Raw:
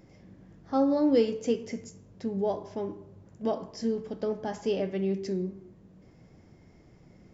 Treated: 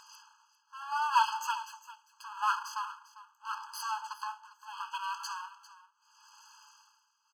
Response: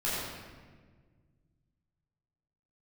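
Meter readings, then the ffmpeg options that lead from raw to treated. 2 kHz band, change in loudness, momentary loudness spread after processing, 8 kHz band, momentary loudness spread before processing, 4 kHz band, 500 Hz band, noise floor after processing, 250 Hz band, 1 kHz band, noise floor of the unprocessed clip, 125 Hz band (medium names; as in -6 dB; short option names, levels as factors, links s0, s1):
+10.0 dB, -4.5 dB, 20 LU, no reading, 14 LU, +3.5 dB, under -40 dB, -74 dBFS, under -40 dB, +8.0 dB, -57 dBFS, under -40 dB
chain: -filter_complex "[0:a]acrossover=split=3100[s0][s1];[s1]acompressor=threshold=0.00178:ratio=4:attack=1:release=60[s2];[s0][s2]amix=inputs=2:normalize=0,bass=f=250:g=6,treble=f=4000:g=12,aresample=16000,aresample=44100,asplit=2[s3][s4];[s4]acompressor=threshold=0.0126:ratio=6,volume=1[s5];[s3][s5]amix=inputs=2:normalize=0,aeval=exprs='val(0)+0.00398*(sin(2*PI*50*n/s)+sin(2*PI*2*50*n/s)/2+sin(2*PI*3*50*n/s)/3+sin(2*PI*4*50*n/s)/4+sin(2*PI*5*50*n/s)/5)':c=same,aeval=exprs='abs(val(0))':c=same,tremolo=f=0.77:d=0.97,aecho=1:1:399:0.15,afftfilt=real='re*eq(mod(floor(b*sr/1024/840),2),1)':imag='im*eq(mod(floor(b*sr/1024/840),2),1)':win_size=1024:overlap=0.75,volume=2.24"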